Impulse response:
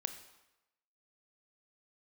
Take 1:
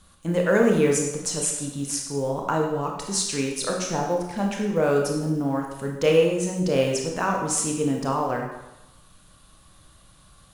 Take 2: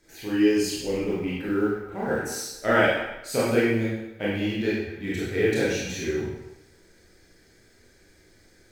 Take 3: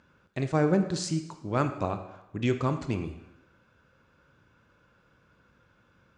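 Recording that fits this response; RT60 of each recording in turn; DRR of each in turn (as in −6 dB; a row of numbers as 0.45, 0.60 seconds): 3; 0.95, 0.95, 0.95 seconds; 0.0, −8.5, 8.0 decibels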